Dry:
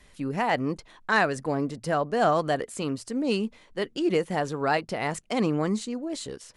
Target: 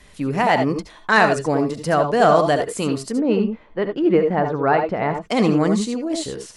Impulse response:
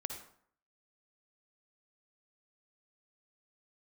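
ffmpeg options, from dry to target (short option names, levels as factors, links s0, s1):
-filter_complex "[0:a]asettb=1/sr,asplit=3[s0][s1][s2];[s0]atrim=end=3.124[s3];[s1]atrim=start=3.12:end=5.25,asetpts=PTS-STARTPTS,afade=t=in:d=0.004:c=qsin,afade=t=out:st=2.126:d=0.004:c=qsin,lowpass=1700[s4];[s2]atrim=start=5.246[s5];[s3][s4]acrossfade=d=0.004:c1=hsin:c2=qsin[s6];[s6][s5]acrossfade=d=0.004:c1=qsin:c2=hsin[s7];[1:a]atrim=start_sample=2205,atrim=end_sample=3087,asetrate=33957,aresample=44100[s8];[s7][s8]afir=irnorm=-1:irlink=0,volume=2.51"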